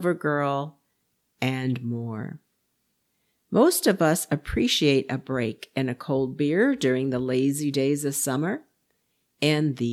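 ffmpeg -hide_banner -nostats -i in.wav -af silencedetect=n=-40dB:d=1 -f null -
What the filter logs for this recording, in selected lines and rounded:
silence_start: 2.36
silence_end: 3.52 | silence_duration: 1.16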